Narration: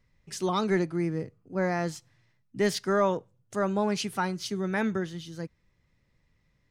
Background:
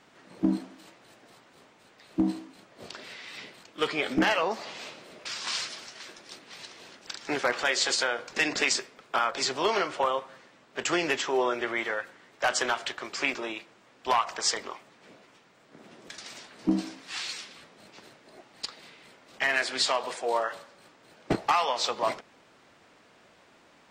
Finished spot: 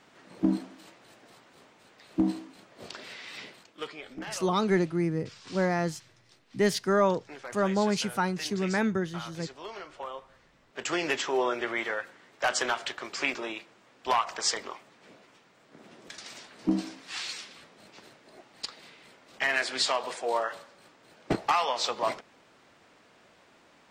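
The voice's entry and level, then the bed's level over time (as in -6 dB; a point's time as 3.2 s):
4.00 s, +1.0 dB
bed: 3.5 s 0 dB
4.03 s -15.5 dB
9.77 s -15.5 dB
11.13 s -1 dB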